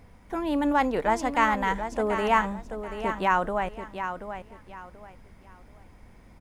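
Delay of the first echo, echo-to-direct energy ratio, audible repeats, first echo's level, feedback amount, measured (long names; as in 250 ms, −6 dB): 733 ms, −8.5 dB, 3, −9.0 dB, 27%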